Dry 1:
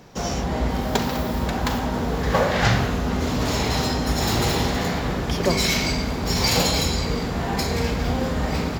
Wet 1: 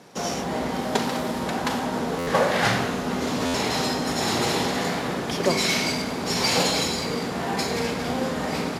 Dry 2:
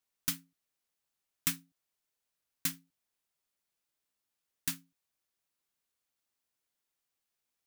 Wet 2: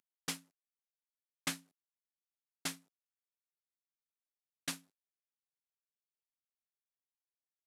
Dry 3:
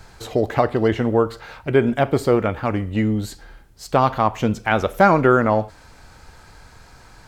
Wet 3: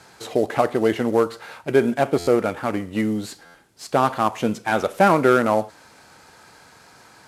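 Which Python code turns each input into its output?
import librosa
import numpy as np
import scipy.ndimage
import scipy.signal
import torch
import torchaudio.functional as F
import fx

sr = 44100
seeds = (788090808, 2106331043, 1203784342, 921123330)

y = fx.cvsd(x, sr, bps=64000)
y = scipy.signal.sosfilt(scipy.signal.butter(2, 190.0, 'highpass', fs=sr, output='sos'), y)
y = fx.buffer_glitch(y, sr, at_s=(2.18, 3.45), block=512, repeats=7)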